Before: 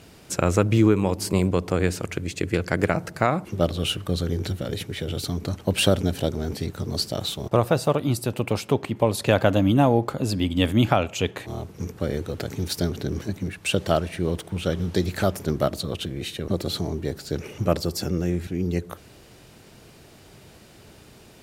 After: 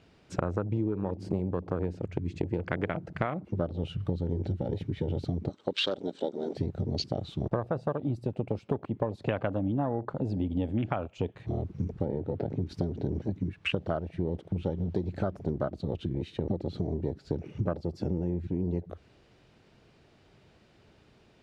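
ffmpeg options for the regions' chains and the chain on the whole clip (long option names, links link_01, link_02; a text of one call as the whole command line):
ffmpeg -i in.wav -filter_complex "[0:a]asettb=1/sr,asplit=3[link_01][link_02][link_03];[link_01]atrim=end=2.184[link_04];[link_02]atrim=start=2.18:end=2.91,asetpts=PTS-STARTPTS,afade=type=in:duration=0.004:curve=qsin,afade=type=out:start_time=0.726:duration=0.004:curve=qsin,bandreject=frequency=110.1:width_type=h:width=4,bandreject=frequency=220.2:width_type=h:width=4,bandreject=frequency=330.3:width_type=h:width=4,bandreject=frequency=440.4:width_type=h:width=4,bandreject=frequency=550.5:width_type=h:width=4,bandreject=frequency=660.6:width_type=h:width=4,bandreject=frequency=770.7:width_type=h:width=4,bandreject=frequency=880.8:width_type=h:width=4,bandreject=frequency=990.9:width_type=h:width=4,bandreject=frequency=1101:width_type=h:width=4,bandreject=frequency=1211.1:width_type=h:width=4,bandreject=frequency=1321.2:width_type=h:width=4,acompressor=mode=upward:threshold=-28dB:ratio=2.5:attack=3.2:release=140:knee=2.83:detection=peak[link_05];[link_03]atrim=start=2.906[link_06];[link_04][link_05]acrossfade=duration=0.004:curve1=hsin:curve2=qsin[link_07];[link_07][link_06]acrossfade=duration=0.004:curve1=qsin:curve2=hsin,asettb=1/sr,asplit=3[link_08][link_09][link_10];[link_08]atrim=end=5.494[link_11];[link_09]atrim=start=5.49:end=6.56,asetpts=PTS-STARTPTS,afade=type=in:duration=0.004:curve=qsin,afade=type=out:start_time=1.066:duration=0.004:curve=qsin,highpass=380,equalizer=frequency=710:width_type=q:width=4:gain=-7,equalizer=frequency=1800:width_type=q:width=4:gain=-5,equalizer=frequency=2500:width_type=q:width=4:gain=-6,equalizer=frequency=3700:width_type=q:width=4:gain=8,equalizer=frequency=8000:width_type=q:width=4:gain=9,lowpass=frequency=8600:width=0.5412,lowpass=frequency=8600:width=1.3066,acompressor=mode=upward:threshold=-39dB:ratio=2.5:attack=3.2:release=140:knee=2.83:detection=peak[link_12];[link_10]atrim=start=6.556[link_13];[link_11][link_12]acrossfade=duration=0.004:curve1=hsin:curve2=qsin[link_14];[link_14][link_13]acrossfade=duration=0.004:curve1=qsin:curve2=hsin,asettb=1/sr,asplit=3[link_15][link_16][link_17];[link_15]atrim=end=12.054[link_18];[link_16]atrim=start=12.05:end=12.69,asetpts=PTS-STARTPTS,afade=type=in:duration=0.004:curve=qsin,afade=type=out:start_time=0.636:duration=0.004:curve=qsin,highpass=83,aemphasis=mode=reproduction:type=75fm,asplit=2[link_19][link_20];[link_20]adelay=20,volume=-13.5dB[link_21];[link_19][link_21]amix=inputs=2:normalize=0,atrim=end_sample=28224[link_22];[link_17]atrim=start=12.686[link_23];[link_18][link_22]acrossfade=duration=0.004:curve1=hsin:curve2=qsin[link_24];[link_24][link_23]acrossfade=duration=0.004:curve1=qsin:curve2=hsin,afwtdn=0.0447,lowpass=4100,acompressor=threshold=-33dB:ratio=6,volume=5.5dB" out.wav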